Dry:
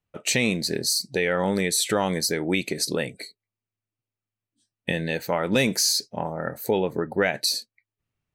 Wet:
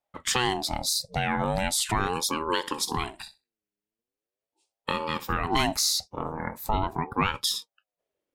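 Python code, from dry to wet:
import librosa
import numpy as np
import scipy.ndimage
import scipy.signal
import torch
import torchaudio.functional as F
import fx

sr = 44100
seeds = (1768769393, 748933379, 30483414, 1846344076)

y = fx.room_flutter(x, sr, wall_m=10.8, rt60_s=0.23, at=(2.62, 5.51), fade=0.02)
y = fx.ring_lfo(y, sr, carrier_hz=510.0, swing_pct=40, hz=0.4)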